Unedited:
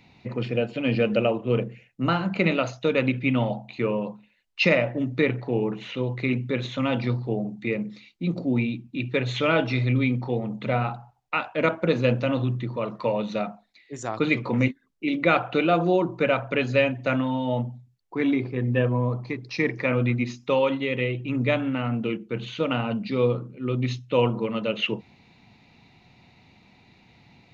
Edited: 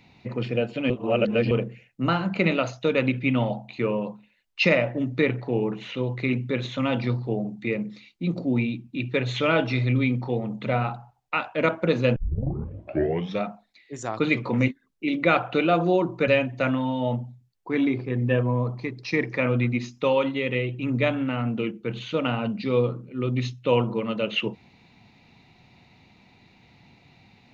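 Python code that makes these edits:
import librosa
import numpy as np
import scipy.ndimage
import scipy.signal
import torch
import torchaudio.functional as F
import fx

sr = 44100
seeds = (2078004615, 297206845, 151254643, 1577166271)

y = fx.edit(x, sr, fx.reverse_span(start_s=0.9, length_s=0.61),
    fx.tape_start(start_s=12.16, length_s=1.27),
    fx.cut(start_s=16.28, length_s=0.46), tone=tone)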